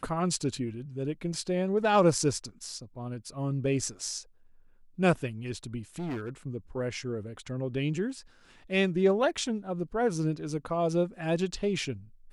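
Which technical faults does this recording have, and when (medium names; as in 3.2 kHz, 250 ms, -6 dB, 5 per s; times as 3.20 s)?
5.96–6.29 s: clipped -31 dBFS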